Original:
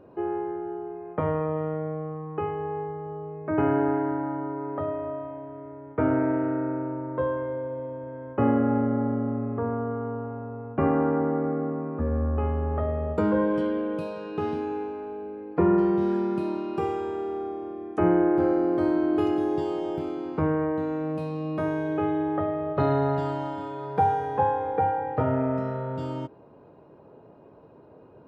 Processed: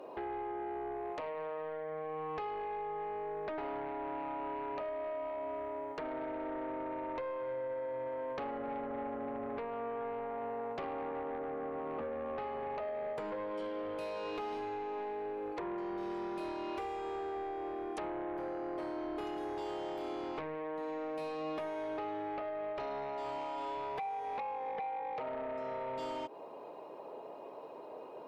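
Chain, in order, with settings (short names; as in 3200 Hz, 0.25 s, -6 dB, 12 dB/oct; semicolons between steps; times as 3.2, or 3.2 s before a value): HPF 630 Hz 12 dB/oct; bell 1500 Hz -12 dB 0.49 oct; compressor 16:1, threshold -44 dBFS, peak gain reduction 23.5 dB; in parallel at -9 dB: sine folder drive 13 dB, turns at -30.5 dBFS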